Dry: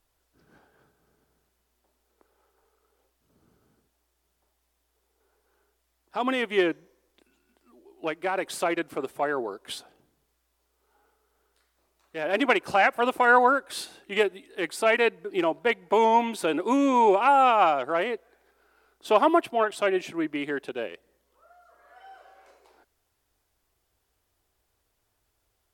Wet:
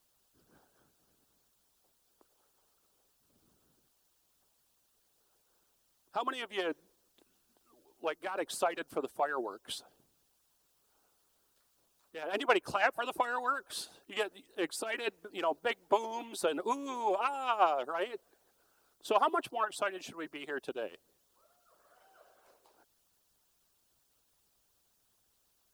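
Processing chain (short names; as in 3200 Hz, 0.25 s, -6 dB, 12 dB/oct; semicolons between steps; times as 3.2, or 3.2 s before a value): added noise white -67 dBFS; bell 2100 Hz -8.5 dB 0.53 oct; harmonic-percussive split harmonic -17 dB; gain -2.5 dB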